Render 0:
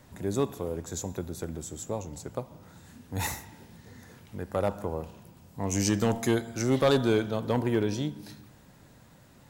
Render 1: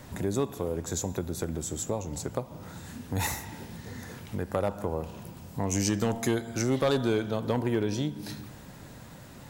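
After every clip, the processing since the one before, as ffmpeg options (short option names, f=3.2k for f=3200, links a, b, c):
-af "acompressor=threshold=-40dB:ratio=2,volume=8.5dB"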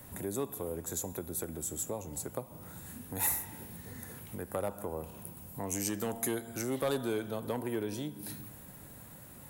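-filter_complex "[0:a]highshelf=f=8k:t=q:w=1.5:g=12,acrossover=split=220|3200[a][b][c];[a]alimiter=level_in=9.5dB:limit=-24dB:level=0:latency=1:release=266,volume=-9.5dB[d];[d][b][c]amix=inputs=3:normalize=0,volume=-6dB"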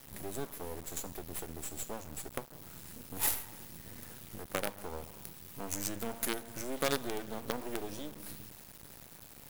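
-af "acrusher=bits=5:dc=4:mix=0:aa=0.000001"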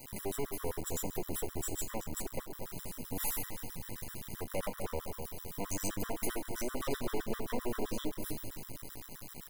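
-filter_complex "[0:a]volume=32.5dB,asoftclip=hard,volume=-32.5dB,asplit=2[a][b];[b]adelay=238,lowpass=f=1.1k:p=1,volume=-6dB,asplit=2[c][d];[d]adelay=238,lowpass=f=1.1k:p=1,volume=0.54,asplit=2[e][f];[f]adelay=238,lowpass=f=1.1k:p=1,volume=0.54,asplit=2[g][h];[h]adelay=238,lowpass=f=1.1k:p=1,volume=0.54,asplit=2[i][j];[j]adelay=238,lowpass=f=1.1k:p=1,volume=0.54,asplit=2[k][l];[l]adelay=238,lowpass=f=1.1k:p=1,volume=0.54,asplit=2[m][n];[n]adelay=238,lowpass=f=1.1k:p=1,volume=0.54[o];[a][c][e][g][i][k][m][o]amix=inputs=8:normalize=0,afftfilt=real='re*gt(sin(2*PI*7.7*pts/sr)*(1-2*mod(floor(b*sr/1024/1000),2)),0)':imag='im*gt(sin(2*PI*7.7*pts/sr)*(1-2*mod(floor(b*sr/1024/1000),2)),0)':win_size=1024:overlap=0.75,volume=6.5dB"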